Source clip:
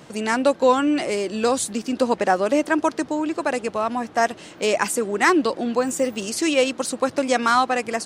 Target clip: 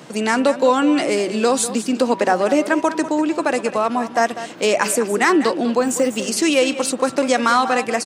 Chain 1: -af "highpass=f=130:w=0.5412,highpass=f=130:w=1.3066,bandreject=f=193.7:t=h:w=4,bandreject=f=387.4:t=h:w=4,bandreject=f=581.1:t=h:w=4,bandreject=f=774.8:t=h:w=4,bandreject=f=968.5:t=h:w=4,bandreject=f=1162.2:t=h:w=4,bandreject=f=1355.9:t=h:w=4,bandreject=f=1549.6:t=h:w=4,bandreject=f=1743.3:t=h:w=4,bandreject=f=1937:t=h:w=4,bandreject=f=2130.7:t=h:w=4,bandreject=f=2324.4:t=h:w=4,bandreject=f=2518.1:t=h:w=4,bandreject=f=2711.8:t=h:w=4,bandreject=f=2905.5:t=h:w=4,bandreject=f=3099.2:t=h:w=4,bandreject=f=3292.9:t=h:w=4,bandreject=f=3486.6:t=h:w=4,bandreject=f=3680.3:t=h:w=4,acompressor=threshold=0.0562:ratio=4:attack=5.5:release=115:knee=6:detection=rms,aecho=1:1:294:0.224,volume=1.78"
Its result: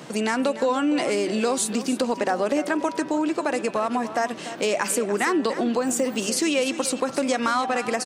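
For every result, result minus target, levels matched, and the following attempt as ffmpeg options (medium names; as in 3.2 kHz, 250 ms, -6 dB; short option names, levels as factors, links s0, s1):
echo 97 ms late; compression: peak gain reduction +8 dB
-af "highpass=f=130:w=0.5412,highpass=f=130:w=1.3066,bandreject=f=193.7:t=h:w=4,bandreject=f=387.4:t=h:w=4,bandreject=f=581.1:t=h:w=4,bandreject=f=774.8:t=h:w=4,bandreject=f=968.5:t=h:w=4,bandreject=f=1162.2:t=h:w=4,bandreject=f=1355.9:t=h:w=4,bandreject=f=1549.6:t=h:w=4,bandreject=f=1743.3:t=h:w=4,bandreject=f=1937:t=h:w=4,bandreject=f=2130.7:t=h:w=4,bandreject=f=2324.4:t=h:w=4,bandreject=f=2518.1:t=h:w=4,bandreject=f=2711.8:t=h:w=4,bandreject=f=2905.5:t=h:w=4,bandreject=f=3099.2:t=h:w=4,bandreject=f=3292.9:t=h:w=4,bandreject=f=3486.6:t=h:w=4,bandreject=f=3680.3:t=h:w=4,acompressor=threshold=0.0562:ratio=4:attack=5.5:release=115:knee=6:detection=rms,aecho=1:1:197:0.224,volume=1.78"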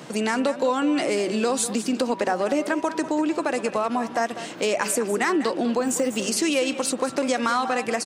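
compression: peak gain reduction +8 dB
-af "highpass=f=130:w=0.5412,highpass=f=130:w=1.3066,bandreject=f=193.7:t=h:w=4,bandreject=f=387.4:t=h:w=4,bandreject=f=581.1:t=h:w=4,bandreject=f=774.8:t=h:w=4,bandreject=f=968.5:t=h:w=4,bandreject=f=1162.2:t=h:w=4,bandreject=f=1355.9:t=h:w=4,bandreject=f=1549.6:t=h:w=4,bandreject=f=1743.3:t=h:w=4,bandreject=f=1937:t=h:w=4,bandreject=f=2130.7:t=h:w=4,bandreject=f=2324.4:t=h:w=4,bandreject=f=2518.1:t=h:w=4,bandreject=f=2711.8:t=h:w=4,bandreject=f=2905.5:t=h:w=4,bandreject=f=3099.2:t=h:w=4,bandreject=f=3292.9:t=h:w=4,bandreject=f=3486.6:t=h:w=4,bandreject=f=3680.3:t=h:w=4,acompressor=threshold=0.188:ratio=4:attack=5.5:release=115:knee=6:detection=rms,aecho=1:1:197:0.224,volume=1.78"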